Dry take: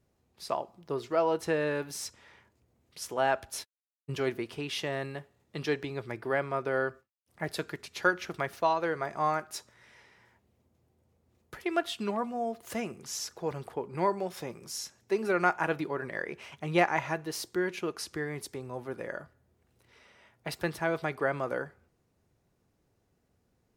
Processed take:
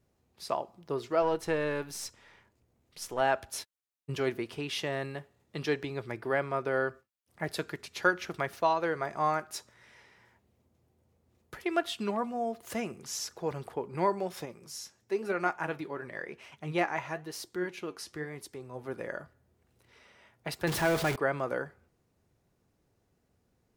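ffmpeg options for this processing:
-filter_complex "[0:a]asettb=1/sr,asplit=3[s0][s1][s2];[s0]atrim=end=1.224[s3];[s1]atrim=start=1.22:end=3.21,asetpts=PTS-STARTPTS,afade=t=in:d=0.004:c=qsin,afade=t=out:st=1.986:d=0.004:c=qsin,aeval=exprs='if(lt(val(0),0),0.708*val(0),val(0))':c=same[s4];[s2]atrim=start=3.206[s5];[s3][s4]acrossfade=d=0.004:c1=hsin:c2=qsin[s6];[s6][s5]acrossfade=d=0.004:c1=qsin:c2=hsin,asettb=1/sr,asplit=3[s7][s8][s9];[s7]atrim=end=14.454[s10];[s8]atrim=start=14.45:end=18.84,asetpts=PTS-STARTPTS,afade=t=in:d=0.004:c=qsin,afade=t=out:st=4.386:d=0.004:c=qsin,flanger=delay=2.6:depth=8.5:regen=71:speed=1:shape=triangular[s11];[s9]atrim=start=18.836[s12];[s10][s11]acrossfade=d=0.004:c1=hsin:c2=qsin[s13];[s13][s12]acrossfade=d=0.004:c1=qsin:c2=hsin,asettb=1/sr,asplit=3[s14][s15][s16];[s14]atrim=end=20.674[s17];[s15]atrim=start=20.67:end=21.16,asetpts=PTS-STARTPTS,afade=t=in:d=0.004:c=qsin,afade=t=out:st=0.486:d=0.004:c=qsin,aeval=exprs='val(0)+0.5*0.0355*sgn(val(0))':c=same[s18];[s16]atrim=start=21.156[s19];[s17][s18]acrossfade=d=0.004:c1=hsin:c2=qsin[s20];[s20][s19]acrossfade=d=0.004:c1=qsin:c2=hsin"

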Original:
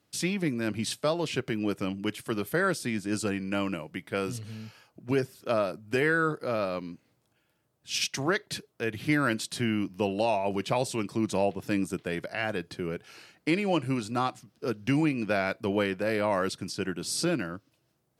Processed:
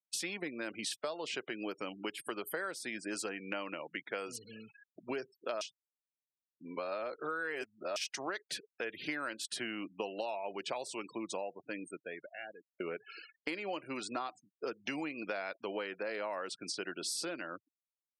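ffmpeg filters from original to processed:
-filter_complex "[0:a]asplit=4[s0][s1][s2][s3];[s0]atrim=end=5.612[s4];[s1]atrim=start=5.608:end=7.962,asetpts=PTS-STARTPTS,areverse[s5];[s2]atrim=start=7.958:end=12.8,asetpts=PTS-STARTPTS,afade=t=out:st=2.162:d=2.68[s6];[s3]atrim=start=12.8,asetpts=PTS-STARTPTS,afade=t=in:d=0.004:c=hsin[s7];[s4][s5]acrossfade=d=0.004:c1=hsin:c2=hsin[s8];[s6][s7]concat=n=2:v=0:a=1[s9];[s8][s9]acrossfade=d=0.004:c1=hsin:c2=hsin,afftfilt=real='re*gte(hypot(re,im),0.00631)':imag='im*gte(hypot(re,im),0.00631)':win_size=1024:overlap=0.75,highpass=450,acompressor=threshold=0.01:ratio=6,volume=1.58"

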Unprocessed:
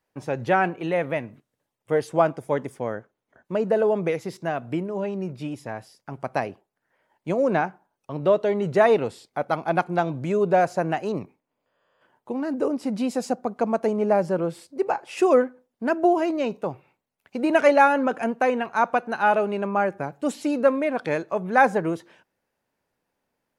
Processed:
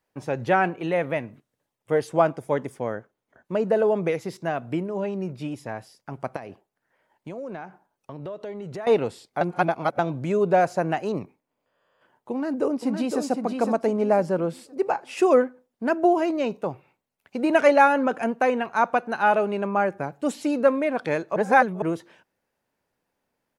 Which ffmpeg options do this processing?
-filter_complex "[0:a]asettb=1/sr,asplit=3[s0][s1][s2];[s0]atrim=end=6.364[s3];[s1]atrim=start=6.36:end=8.87,asetpts=PTS-STARTPTS,afade=t=in:d=0.004:c=qsin,afade=t=out:st=2.506:d=0.004:c=qsin,acompressor=threshold=0.0224:ratio=5:attack=3.2:release=140:knee=1:detection=peak[s4];[s2]atrim=start=8.866[s5];[s3][s4]acrossfade=d=0.004:c1=hsin:c2=qsin[s6];[s6][s5]acrossfade=d=0.004:c1=qsin:c2=hsin,asplit=2[s7][s8];[s8]afade=t=in:st=12.31:d=0.01,afade=t=out:st=13.21:d=0.01,aecho=0:1:510|1020|1530|2040:0.530884|0.159265|0.0477796|0.0143339[s9];[s7][s9]amix=inputs=2:normalize=0,asplit=5[s10][s11][s12][s13][s14];[s10]atrim=end=9.412[s15];[s11]atrim=start=9.408:end=9.992,asetpts=PTS-STARTPTS,areverse[s16];[s12]atrim=start=9.988:end=21.362[s17];[s13]atrim=start=21.358:end=21.822,asetpts=PTS-STARTPTS,areverse[s18];[s14]atrim=start=21.818[s19];[s15][s16]acrossfade=d=0.004:c1=hsin:c2=hsin[s20];[s20][s17]acrossfade=d=0.004:c1=hsin:c2=hsin[s21];[s21][s18]acrossfade=d=0.004:c1=hsin:c2=hsin[s22];[s22][s19]acrossfade=d=0.004:c1=hsin:c2=hsin"

